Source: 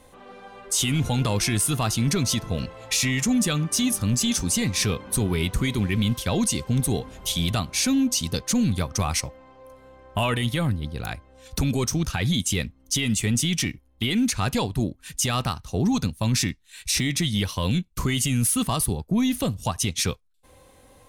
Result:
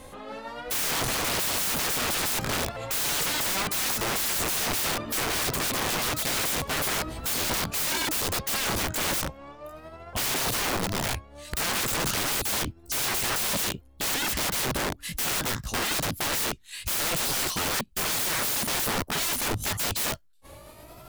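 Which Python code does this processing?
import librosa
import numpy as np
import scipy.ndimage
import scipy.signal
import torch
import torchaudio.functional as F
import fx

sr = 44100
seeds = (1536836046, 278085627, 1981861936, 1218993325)

y = fx.pitch_ramps(x, sr, semitones=5.0, every_ms=921)
y = (np.mod(10.0 ** (29.5 / 20.0) * y + 1.0, 2.0) - 1.0) / 10.0 ** (29.5 / 20.0)
y = F.gain(torch.from_numpy(y), 7.0).numpy()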